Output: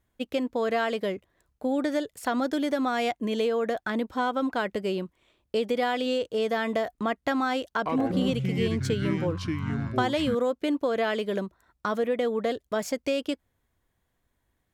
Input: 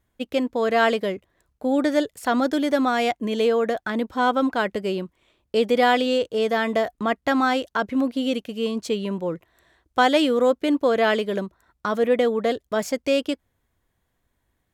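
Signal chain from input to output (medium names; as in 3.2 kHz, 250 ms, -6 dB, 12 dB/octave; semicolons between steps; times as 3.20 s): compression, threshold -20 dBFS, peak gain reduction 8 dB; 7.69–10.35 s: ever faster or slower copies 81 ms, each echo -6 st, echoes 3; trim -2.5 dB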